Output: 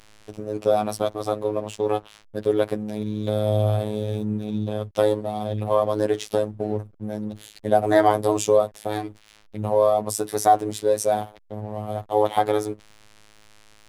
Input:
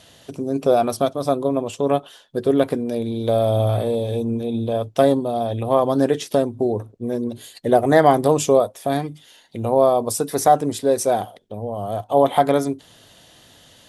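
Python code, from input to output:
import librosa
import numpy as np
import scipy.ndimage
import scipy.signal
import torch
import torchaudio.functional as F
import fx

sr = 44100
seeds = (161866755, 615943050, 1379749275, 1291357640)

y = fx.robotise(x, sr, hz=106.0)
y = fx.backlash(y, sr, play_db=-39.5)
y = y * librosa.db_to_amplitude(-1.0)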